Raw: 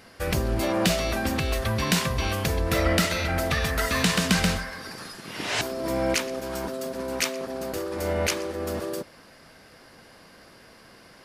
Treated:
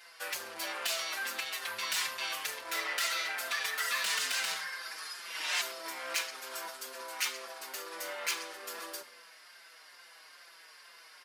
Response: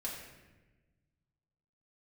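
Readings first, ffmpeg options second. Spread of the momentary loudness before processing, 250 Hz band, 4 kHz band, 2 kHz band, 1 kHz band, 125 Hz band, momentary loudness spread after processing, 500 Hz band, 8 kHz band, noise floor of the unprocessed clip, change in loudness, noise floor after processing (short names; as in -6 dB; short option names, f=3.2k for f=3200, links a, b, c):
10 LU, -29.0 dB, -4.5 dB, -5.0 dB, -9.0 dB, under -40 dB, 22 LU, -18.5 dB, -5.0 dB, -52 dBFS, -8.5 dB, -56 dBFS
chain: -filter_complex "[0:a]asoftclip=type=tanh:threshold=-24dB,highpass=1.2k,asplit=2[a][b];[1:a]atrim=start_sample=2205,asetrate=83790,aresample=44100[c];[b][c]afir=irnorm=-1:irlink=0,volume=-0.5dB[d];[a][d]amix=inputs=2:normalize=0,asplit=2[e][f];[f]adelay=5.3,afreqshift=-2.3[g];[e][g]amix=inputs=2:normalize=1"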